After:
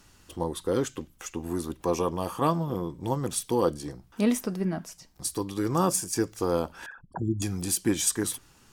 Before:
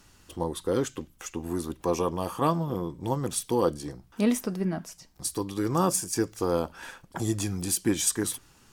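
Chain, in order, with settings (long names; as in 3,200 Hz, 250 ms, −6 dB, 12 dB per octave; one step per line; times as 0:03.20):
0:06.86–0:07.42: spectral envelope exaggerated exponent 3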